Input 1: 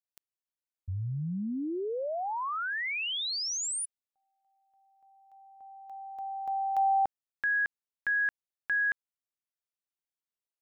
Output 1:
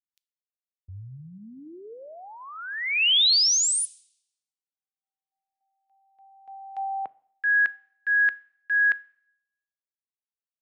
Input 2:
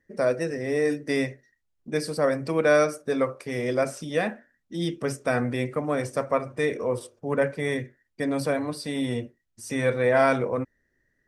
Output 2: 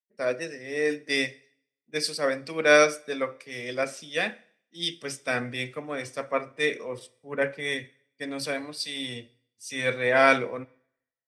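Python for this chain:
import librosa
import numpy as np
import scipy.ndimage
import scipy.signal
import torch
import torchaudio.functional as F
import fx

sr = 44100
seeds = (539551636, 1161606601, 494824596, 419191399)

y = fx.weighting(x, sr, curve='D')
y = fx.rev_double_slope(y, sr, seeds[0], early_s=0.9, late_s=2.7, knee_db=-18, drr_db=17.5)
y = fx.band_widen(y, sr, depth_pct=100)
y = y * 10.0 ** (-5.0 / 20.0)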